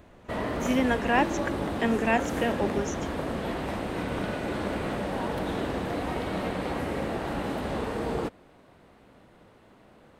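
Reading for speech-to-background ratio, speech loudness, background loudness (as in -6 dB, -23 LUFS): 3.0 dB, -28.5 LUFS, -31.5 LUFS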